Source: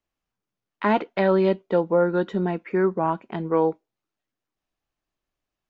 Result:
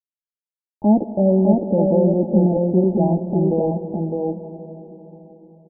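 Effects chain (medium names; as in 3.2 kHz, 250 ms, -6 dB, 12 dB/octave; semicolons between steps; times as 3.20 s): bass shelf 420 Hz +8.5 dB; in parallel at +0.5 dB: peak limiter -16.5 dBFS, peak gain reduction 11.5 dB; on the sum: Chebyshev shaper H 5 -20 dB, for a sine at -2.5 dBFS; small samples zeroed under -21.5 dBFS; rippled Chebyshev low-pass 870 Hz, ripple 9 dB; delay 608 ms -3.5 dB; on a send at -10.5 dB: reverberation RT60 4.5 s, pre-delay 93 ms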